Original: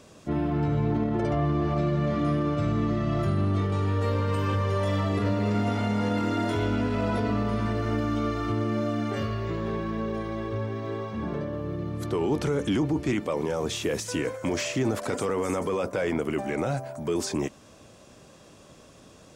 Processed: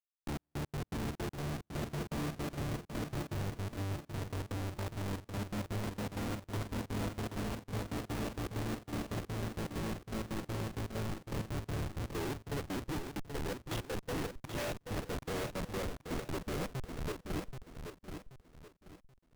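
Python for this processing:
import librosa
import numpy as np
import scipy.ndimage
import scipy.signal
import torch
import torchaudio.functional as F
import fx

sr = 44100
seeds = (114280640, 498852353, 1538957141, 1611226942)

p1 = scipy.signal.sosfilt(scipy.signal.butter(2, 7000.0, 'lowpass', fs=sr, output='sos'), x)
p2 = fx.rider(p1, sr, range_db=4, speed_s=0.5)
p3 = p1 + (p2 * 10.0 ** (-1.0 / 20.0))
p4 = fx.schmitt(p3, sr, flips_db=-23.0)
p5 = fx.step_gate(p4, sr, bpm=163, pattern='x.xx..x.x.xx.', floor_db=-60.0, edge_ms=4.5)
p6 = np.clip(10.0 ** (31.0 / 20.0) * p5, -1.0, 1.0) / 10.0 ** (31.0 / 20.0)
p7 = p6 + fx.echo_feedback(p6, sr, ms=780, feedback_pct=33, wet_db=-7.0, dry=0)
y = p7 * 10.0 ** (-5.5 / 20.0)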